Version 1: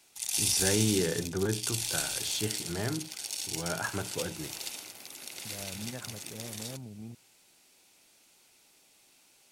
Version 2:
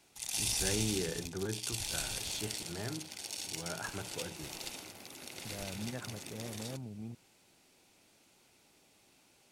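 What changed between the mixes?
first voice -7.5 dB; background: add tilt -2 dB/oct

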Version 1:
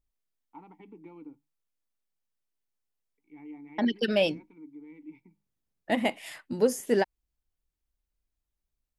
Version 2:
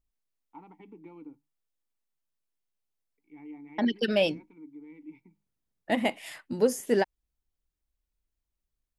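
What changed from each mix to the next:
none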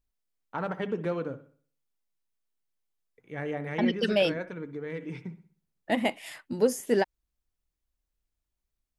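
first voice: remove vowel filter u; reverb: on

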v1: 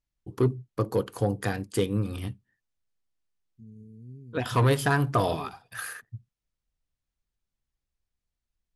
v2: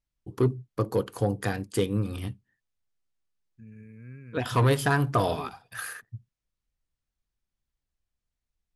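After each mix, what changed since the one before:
second voice: remove Chebyshev band-stop 430–3900 Hz, order 4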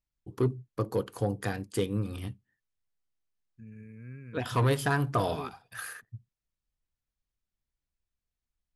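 first voice -3.5 dB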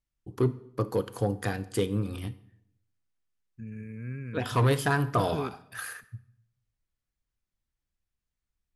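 second voice +6.5 dB; reverb: on, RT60 0.75 s

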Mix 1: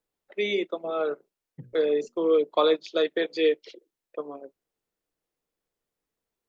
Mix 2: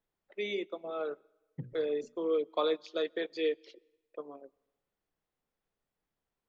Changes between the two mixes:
first voice -9.0 dB; reverb: on, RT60 1.1 s

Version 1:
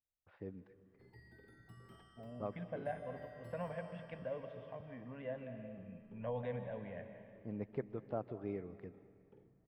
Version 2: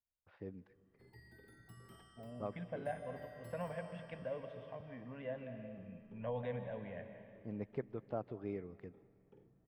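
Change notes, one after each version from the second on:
first voice: send -6.0 dB; master: add high shelf 6200 Hz +11 dB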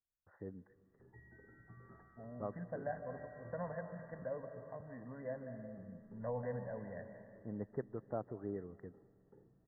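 master: add brick-wall FIR low-pass 2000 Hz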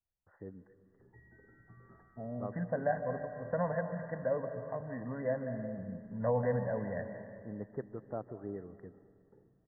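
first voice: send +6.5 dB; second voice +9.5 dB

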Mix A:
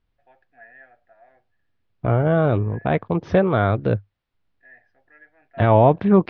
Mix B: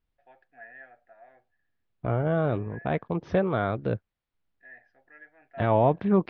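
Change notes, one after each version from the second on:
second voice -7.0 dB; master: add bell 100 Hz -6 dB 0.28 oct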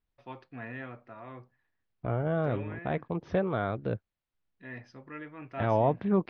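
first voice: remove double band-pass 1100 Hz, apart 1.2 oct; second voice -4.0 dB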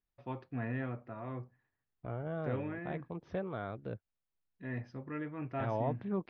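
first voice: add tilt -2.5 dB/oct; second voice -9.5 dB

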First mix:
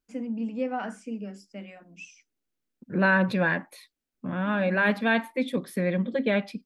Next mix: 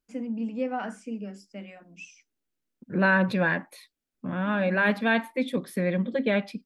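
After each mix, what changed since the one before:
none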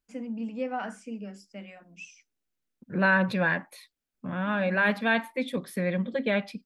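master: add bell 310 Hz -4.5 dB 1.3 oct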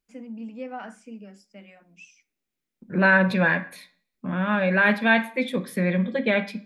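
first voice -4.5 dB; reverb: on, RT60 0.55 s

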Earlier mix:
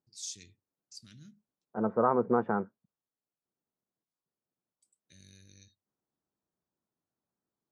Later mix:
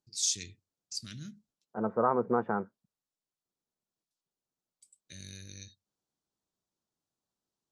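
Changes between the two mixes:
first voice +11.0 dB; master: add bell 240 Hz -2.5 dB 2.4 oct

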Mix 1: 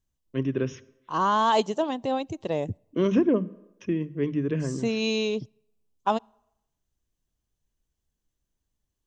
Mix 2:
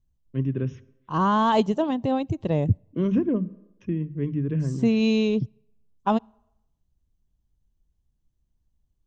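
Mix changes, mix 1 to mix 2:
first voice -7.0 dB; master: add tone controls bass +14 dB, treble -7 dB

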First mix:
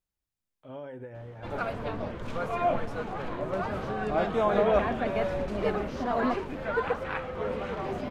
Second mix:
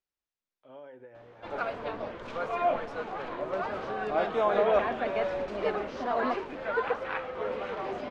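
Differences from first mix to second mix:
first voice -5.5 dB; master: add three-band isolator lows -13 dB, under 290 Hz, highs -17 dB, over 6700 Hz

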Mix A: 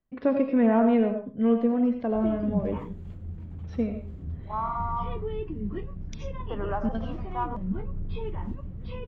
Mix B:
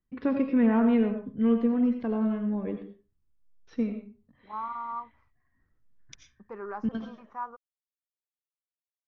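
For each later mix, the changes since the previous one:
second voice: send off; background: muted; master: add bell 630 Hz -10.5 dB 0.61 oct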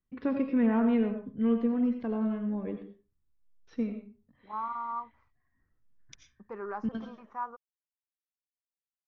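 first voice -3.0 dB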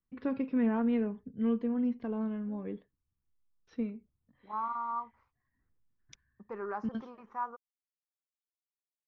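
reverb: off

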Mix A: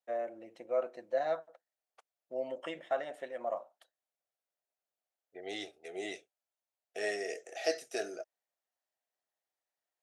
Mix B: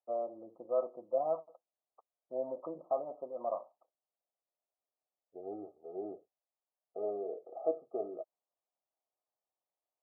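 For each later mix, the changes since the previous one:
master: add brick-wall FIR low-pass 1300 Hz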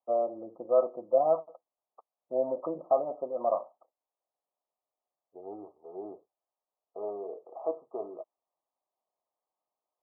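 first voice +8.0 dB; second voice: remove Butterworth band-stop 990 Hz, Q 2

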